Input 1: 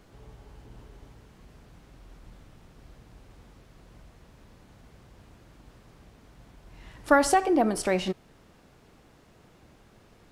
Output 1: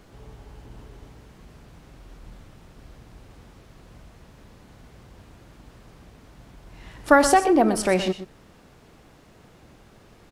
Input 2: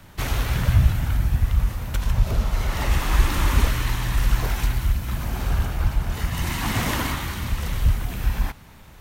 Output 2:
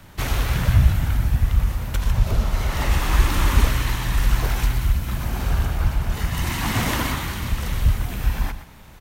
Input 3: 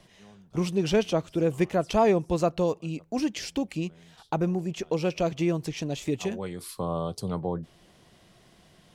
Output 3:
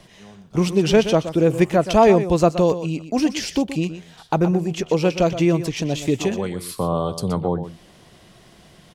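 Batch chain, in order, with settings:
single-tap delay 123 ms −12 dB
normalise the peak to −3 dBFS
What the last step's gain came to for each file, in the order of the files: +4.5, +1.5, +8.0 decibels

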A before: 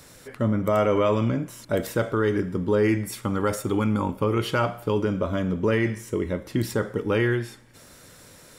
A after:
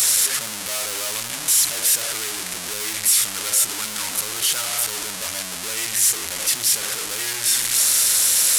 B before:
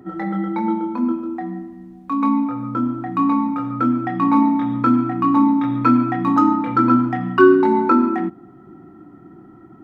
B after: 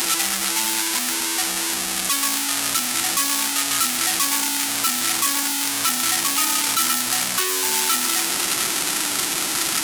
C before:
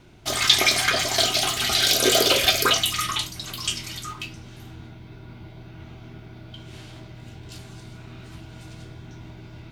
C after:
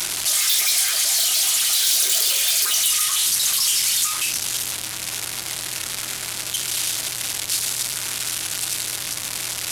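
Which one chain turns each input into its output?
linear delta modulator 64 kbit/s, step −16.5 dBFS
hard clipping −19.5 dBFS
first-order pre-emphasis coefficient 0.97
loudness normalisation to −19 LKFS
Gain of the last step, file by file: +8.5, +13.5, +7.0 decibels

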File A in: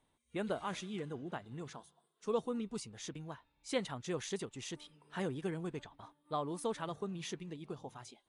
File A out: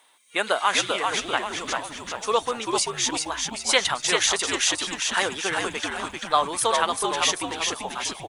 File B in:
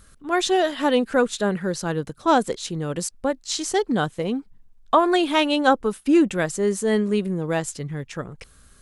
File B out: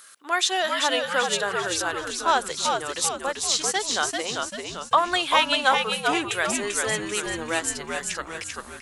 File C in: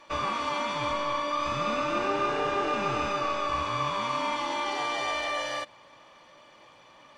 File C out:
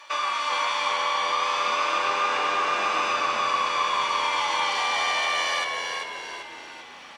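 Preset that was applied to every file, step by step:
Bessel high-pass filter 1,200 Hz, order 2
in parallel at +2 dB: downward compressor, threshold −37 dBFS
on the sum: echo with shifted repeats 391 ms, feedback 49%, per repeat −86 Hz, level −4 dB
loudness normalisation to −24 LKFS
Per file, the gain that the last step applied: +16.0, +1.5, +3.0 decibels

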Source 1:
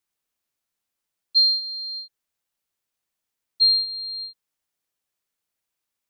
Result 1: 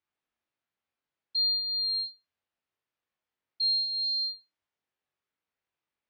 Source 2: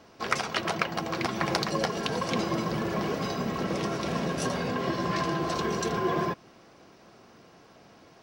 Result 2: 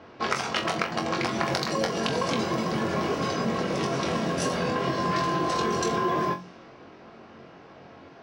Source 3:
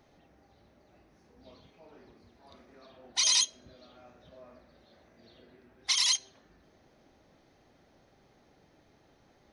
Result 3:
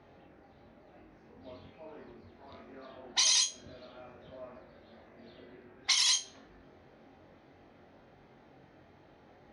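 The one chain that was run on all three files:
low-pass that shuts in the quiet parts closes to 2,800 Hz, open at −24.5 dBFS
high-pass filter 50 Hz
mains-hum notches 60/120/180 Hz
downward compressor 4 to 1, threshold −30 dBFS
on a send: flutter between parallel walls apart 3.8 metres, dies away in 0.23 s
on the sum: loudness normalisation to −27 LKFS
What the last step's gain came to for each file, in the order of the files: −2.0, +5.5, +4.5 decibels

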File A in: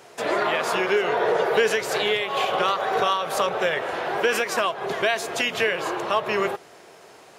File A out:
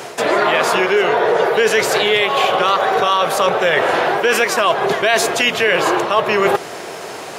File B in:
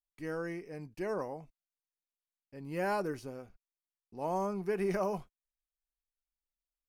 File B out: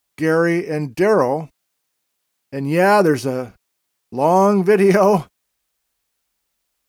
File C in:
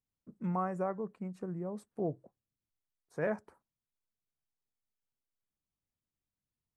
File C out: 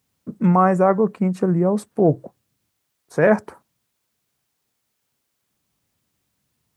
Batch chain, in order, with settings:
high-pass filter 79 Hz
reversed playback
downward compressor 6 to 1, threshold −31 dBFS
reversed playback
normalise the peak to −2 dBFS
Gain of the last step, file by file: +18.5, +22.0, +21.0 decibels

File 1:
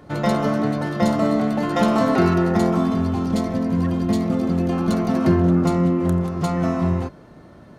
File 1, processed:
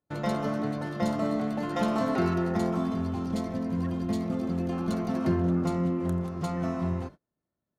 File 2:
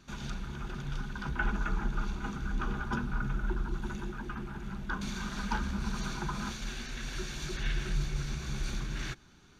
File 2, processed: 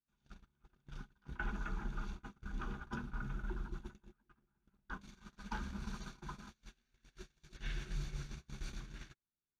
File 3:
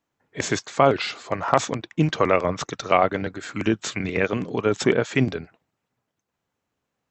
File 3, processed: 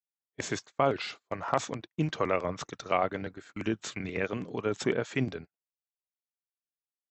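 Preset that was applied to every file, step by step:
noise gate −33 dBFS, range −33 dB
level −9 dB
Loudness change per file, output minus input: −9.0, −10.0, −9.0 LU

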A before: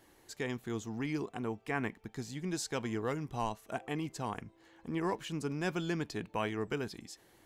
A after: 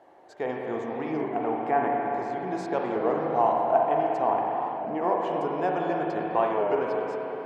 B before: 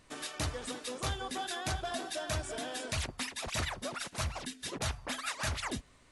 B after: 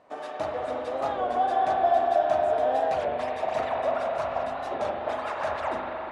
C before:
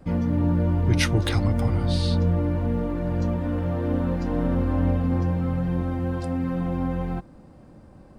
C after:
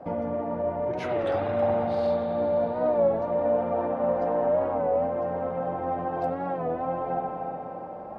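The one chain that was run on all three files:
brickwall limiter −18.5 dBFS
downward compressor, threshold −29 dBFS
resonant band-pass 690 Hz, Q 3
spring reverb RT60 4 s, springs 39/59 ms, chirp 65 ms, DRR −2 dB
wow of a warped record 33 1/3 rpm, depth 100 cents
loudness normalisation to −27 LKFS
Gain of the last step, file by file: +17.0, +15.0, +16.5 decibels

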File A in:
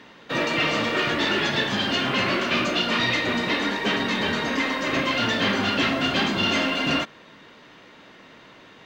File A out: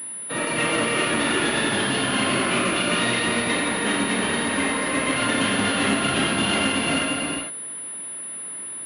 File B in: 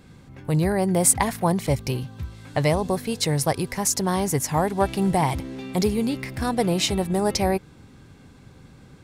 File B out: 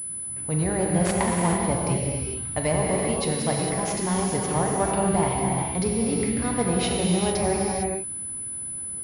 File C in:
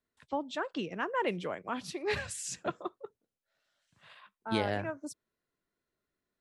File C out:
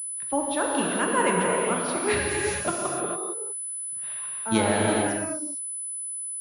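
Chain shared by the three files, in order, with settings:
reverb whose tail is shaped and stops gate 480 ms flat, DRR −2.5 dB
switching amplifier with a slow clock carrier 10,000 Hz
normalise the peak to −9 dBFS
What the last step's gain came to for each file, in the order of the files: −3.5, −5.5, +6.0 decibels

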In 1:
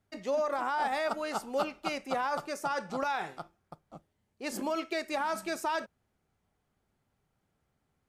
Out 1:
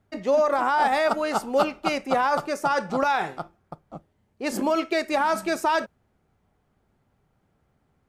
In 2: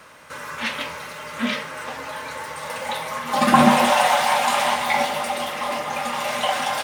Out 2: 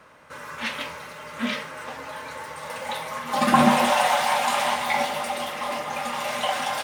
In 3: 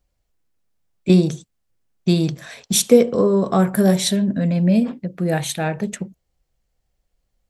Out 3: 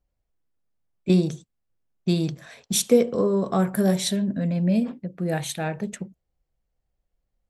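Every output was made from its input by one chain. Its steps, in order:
one half of a high-frequency compander decoder only
loudness normalisation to −24 LKFS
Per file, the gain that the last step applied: +10.0, −3.0, −5.5 decibels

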